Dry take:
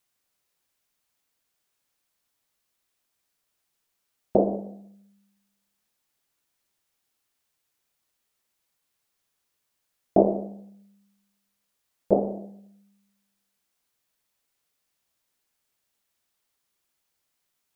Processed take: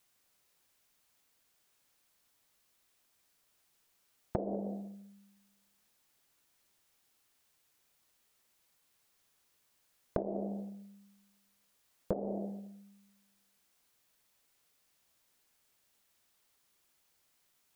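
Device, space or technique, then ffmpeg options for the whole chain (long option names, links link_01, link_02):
serial compression, leveller first: -af "acompressor=threshold=-22dB:ratio=6,acompressor=threshold=-35dB:ratio=10,volume=4dB"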